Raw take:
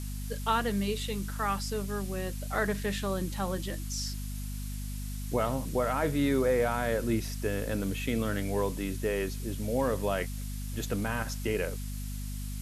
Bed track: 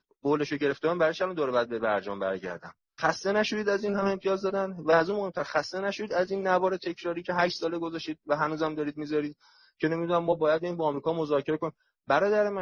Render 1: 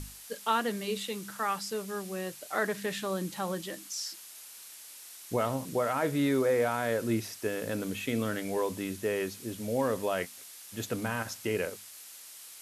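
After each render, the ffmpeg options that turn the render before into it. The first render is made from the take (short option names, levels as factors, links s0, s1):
-af "bandreject=f=50:t=h:w=6,bandreject=f=100:t=h:w=6,bandreject=f=150:t=h:w=6,bandreject=f=200:t=h:w=6,bandreject=f=250:t=h:w=6"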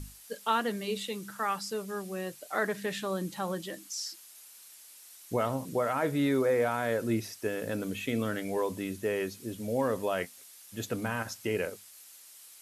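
-af "afftdn=nr=6:nf=-49"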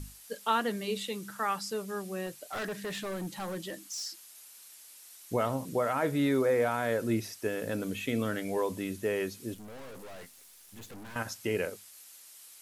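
-filter_complex "[0:a]asettb=1/sr,asplit=3[s0][s1][s2];[s0]atrim=end=2.264[s3];[s1]atrim=start=2.26:end=4.06,asetpts=PTS-STARTPTS,afade=t=in:d=0.004:c=qsin,afade=t=out:st=1.796:d=0.004:c=qsin,asoftclip=type=hard:threshold=0.0237[s4];[s2]atrim=start=4.056[s5];[s3][s4]acrossfade=d=0.004:c1=hsin:c2=qsin[s6];[s6][s5]acrossfade=d=0.004:c1=qsin:c2=hsin,asettb=1/sr,asplit=3[s7][s8][s9];[s7]atrim=end=9.544[s10];[s8]atrim=start=9.54:end=11.16,asetpts=PTS-STARTPTS,afade=t=in:d=0.004:c=qsin,afade=t=out:st=1.616:d=0.004:c=qsin,aeval=exprs='(tanh(178*val(0)+0.65)-tanh(0.65))/178':c=same[s11];[s9]atrim=start=11.156[s12];[s10][s11]acrossfade=d=0.004:c1=hsin:c2=qsin[s13];[s13][s12]acrossfade=d=0.004:c1=qsin:c2=hsin"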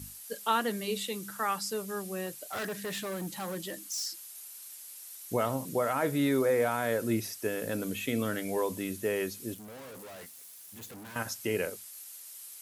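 -af "highpass=75,highshelf=f=9200:g=10.5"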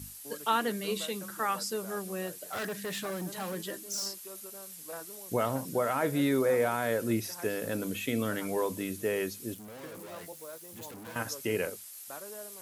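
-filter_complex "[1:a]volume=0.0841[s0];[0:a][s0]amix=inputs=2:normalize=0"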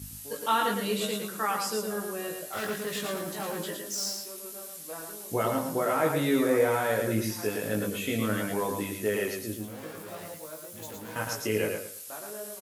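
-filter_complex "[0:a]asplit=2[s0][s1];[s1]adelay=19,volume=0.708[s2];[s0][s2]amix=inputs=2:normalize=0,aecho=1:1:111|222|333|444:0.596|0.155|0.0403|0.0105"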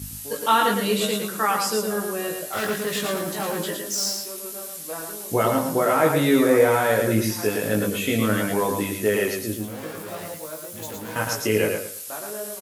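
-af "volume=2.24"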